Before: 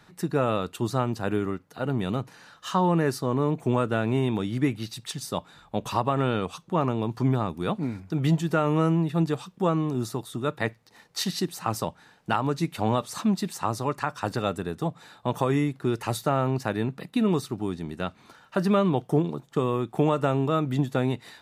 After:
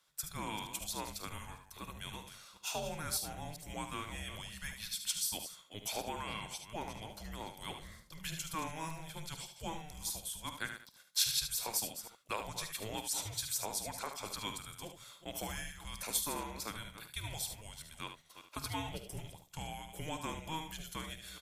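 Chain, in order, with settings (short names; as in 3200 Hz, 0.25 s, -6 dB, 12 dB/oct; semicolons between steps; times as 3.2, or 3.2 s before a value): reverse delay 0.198 s, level -11 dB; pre-emphasis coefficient 0.97; gate -60 dBFS, range -9 dB; frequency shift -320 Hz; early reflections 50 ms -15 dB, 74 ms -8.5 dB; gain +2.5 dB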